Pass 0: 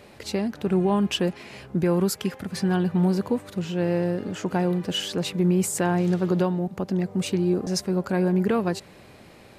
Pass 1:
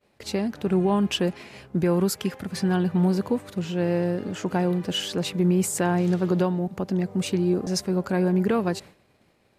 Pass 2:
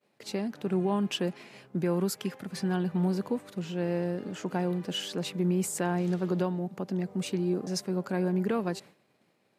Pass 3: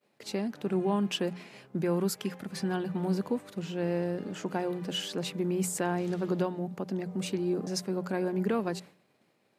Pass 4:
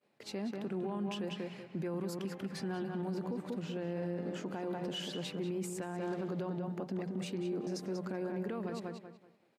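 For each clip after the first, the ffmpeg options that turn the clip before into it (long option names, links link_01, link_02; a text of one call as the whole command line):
ffmpeg -i in.wav -af "agate=range=-33dB:threshold=-38dB:ratio=3:detection=peak" out.wav
ffmpeg -i in.wav -af "highpass=frequency=130:width=0.5412,highpass=frequency=130:width=1.3066,volume=-6dB" out.wav
ffmpeg -i in.wav -af "bandreject=frequency=60:width_type=h:width=6,bandreject=frequency=120:width_type=h:width=6,bandreject=frequency=180:width_type=h:width=6" out.wav
ffmpeg -i in.wav -filter_complex "[0:a]asplit=2[link_01][link_02];[link_02]adelay=189,lowpass=frequency=3500:poles=1,volume=-6dB,asplit=2[link_03][link_04];[link_04]adelay=189,lowpass=frequency=3500:poles=1,volume=0.28,asplit=2[link_05][link_06];[link_06]adelay=189,lowpass=frequency=3500:poles=1,volume=0.28,asplit=2[link_07][link_08];[link_08]adelay=189,lowpass=frequency=3500:poles=1,volume=0.28[link_09];[link_03][link_05][link_07][link_09]amix=inputs=4:normalize=0[link_10];[link_01][link_10]amix=inputs=2:normalize=0,alimiter=level_in=2.5dB:limit=-24dB:level=0:latency=1:release=65,volume=-2.5dB,highshelf=frequency=5800:gain=-7,volume=-3dB" out.wav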